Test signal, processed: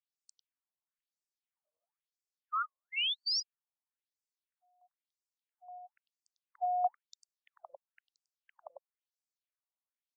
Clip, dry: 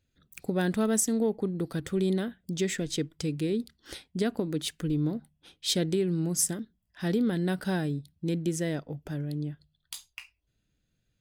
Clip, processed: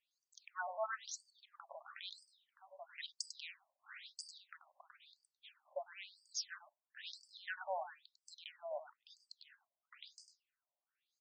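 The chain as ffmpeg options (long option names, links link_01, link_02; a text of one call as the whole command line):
ffmpeg -i in.wav -af "aecho=1:1:99:0.376,afftfilt=real='re*between(b*sr/1024,760*pow(6500/760,0.5+0.5*sin(2*PI*1*pts/sr))/1.41,760*pow(6500/760,0.5+0.5*sin(2*PI*1*pts/sr))*1.41)':imag='im*between(b*sr/1024,760*pow(6500/760,0.5+0.5*sin(2*PI*1*pts/sr))/1.41,760*pow(6500/760,0.5+0.5*sin(2*PI*1*pts/sr))*1.41)':win_size=1024:overlap=0.75,volume=-1.5dB" out.wav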